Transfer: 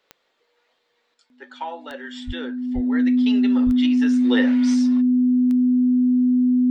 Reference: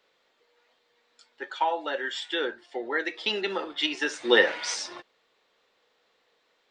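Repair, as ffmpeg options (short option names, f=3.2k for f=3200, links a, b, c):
-filter_complex "[0:a]adeclick=t=4,bandreject=f=250:w=30,asplit=3[a][b][c];[a]afade=t=out:st=2.26:d=0.02[d];[b]highpass=f=140:w=0.5412,highpass=f=140:w=1.3066,afade=t=in:st=2.26:d=0.02,afade=t=out:st=2.38:d=0.02[e];[c]afade=t=in:st=2.38:d=0.02[f];[d][e][f]amix=inputs=3:normalize=0,asplit=3[g][h][i];[g]afade=t=out:st=2.74:d=0.02[j];[h]highpass=f=140:w=0.5412,highpass=f=140:w=1.3066,afade=t=in:st=2.74:d=0.02,afade=t=out:st=2.86:d=0.02[k];[i]afade=t=in:st=2.86:d=0.02[l];[j][k][l]amix=inputs=3:normalize=0,asplit=3[m][n][o];[m]afade=t=out:st=3.65:d=0.02[p];[n]highpass=f=140:w=0.5412,highpass=f=140:w=1.3066,afade=t=in:st=3.65:d=0.02,afade=t=out:st=3.77:d=0.02[q];[o]afade=t=in:st=3.77:d=0.02[r];[p][q][r]amix=inputs=3:normalize=0,asetnsamples=n=441:p=0,asendcmd='1.14 volume volume 5dB',volume=0dB"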